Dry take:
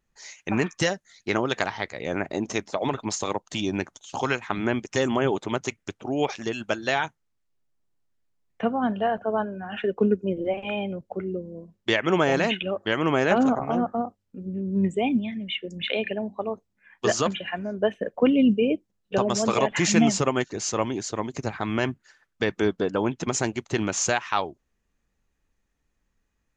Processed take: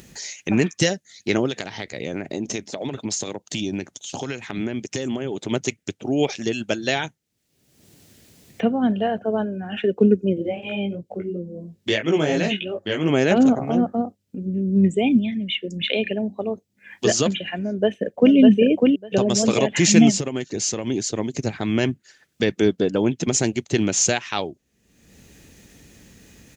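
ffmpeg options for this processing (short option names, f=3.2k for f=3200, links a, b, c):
-filter_complex "[0:a]asettb=1/sr,asplit=3[a][b][c];[a]atrim=end=1.464[d];[b]atrim=start=1.46:end=5.51,asetpts=PTS-STARTPTS,afade=t=in:d=0.004:c=qsin,afade=t=out:st=4.046:d=0.004:c=qsin,acompressor=threshold=-27dB:ratio=6:attack=3.2:release=140:knee=1:detection=peak[e];[c]atrim=start=5.506[f];[d][e]acrossfade=d=0.004:c1=hsin:c2=qsin[g];[g][f]acrossfade=d=0.004:c1=qsin:c2=hsin,asplit=3[h][i][j];[h]afade=t=out:st=10.41:d=0.02[k];[i]flanger=delay=17.5:depth=2.4:speed=2.9,afade=t=in:st=10.41:d=0.02,afade=t=out:st=13.08:d=0.02[l];[j]afade=t=in:st=13.08:d=0.02[m];[k][l][m]amix=inputs=3:normalize=0,asplit=2[n][o];[o]afade=t=in:st=17.63:d=0.01,afade=t=out:st=18.35:d=0.01,aecho=0:1:600|1200|1800:0.749894|0.112484|0.0168726[p];[n][p]amix=inputs=2:normalize=0,asplit=3[q][r][s];[q]afade=t=out:st=20.1:d=0.02[t];[r]acompressor=threshold=-25dB:ratio=6:attack=3.2:release=140:knee=1:detection=peak,afade=t=in:st=20.1:d=0.02,afade=t=out:st=20.86:d=0.02[u];[s]afade=t=in:st=20.86:d=0.02[v];[t][u][v]amix=inputs=3:normalize=0,highpass=100,equalizer=f=1.1k:t=o:w=1.4:g=-14,acompressor=mode=upward:threshold=-35dB:ratio=2.5,volume=7.5dB"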